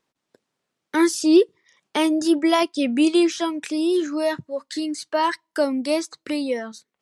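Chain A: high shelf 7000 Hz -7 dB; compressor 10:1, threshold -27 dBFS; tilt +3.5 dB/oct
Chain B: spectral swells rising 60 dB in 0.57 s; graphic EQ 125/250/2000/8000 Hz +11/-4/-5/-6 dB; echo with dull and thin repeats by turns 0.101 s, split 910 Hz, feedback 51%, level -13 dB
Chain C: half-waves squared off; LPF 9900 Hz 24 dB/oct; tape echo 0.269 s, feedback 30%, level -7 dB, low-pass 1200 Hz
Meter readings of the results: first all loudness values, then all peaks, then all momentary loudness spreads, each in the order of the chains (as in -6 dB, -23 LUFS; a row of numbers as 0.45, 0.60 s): -32.5, -22.0, -17.0 LUFS; -9.0, -5.5, -3.0 dBFS; 5, 11, 10 LU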